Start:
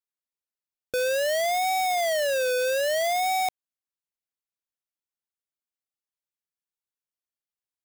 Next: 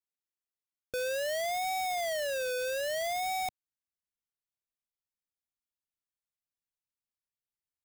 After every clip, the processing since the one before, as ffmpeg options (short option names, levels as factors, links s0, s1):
-af "asubboost=boost=3:cutoff=210,volume=0.447"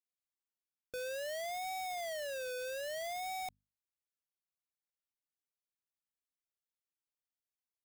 -af "bandreject=f=50:t=h:w=6,bandreject=f=100:t=h:w=6,bandreject=f=150:t=h:w=6,bandreject=f=200:t=h:w=6,bandreject=f=250:t=h:w=6,volume=0.422"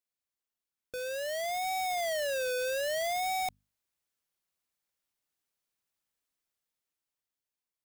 -af "dynaudnorm=f=250:g=11:m=2.24,volume=1.19"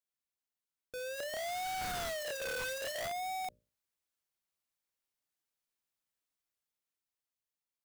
-af "bandreject=f=60:t=h:w=6,bandreject=f=120:t=h:w=6,bandreject=f=180:t=h:w=6,bandreject=f=240:t=h:w=6,bandreject=f=300:t=h:w=6,bandreject=f=360:t=h:w=6,bandreject=f=420:t=h:w=6,bandreject=f=480:t=h:w=6,bandreject=f=540:t=h:w=6,bandreject=f=600:t=h:w=6,aeval=exprs='(mod(42.2*val(0)+1,2)-1)/42.2':c=same,volume=0.631"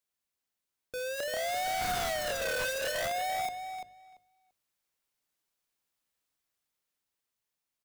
-filter_complex "[0:a]asplit=2[s0][s1];[s1]adelay=340,lowpass=f=4800:p=1,volume=0.473,asplit=2[s2][s3];[s3]adelay=340,lowpass=f=4800:p=1,volume=0.16,asplit=2[s4][s5];[s5]adelay=340,lowpass=f=4800:p=1,volume=0.16[s6];[s0][s2][s4][s6]amix=inputs=4:normalize=0,volume=1.78"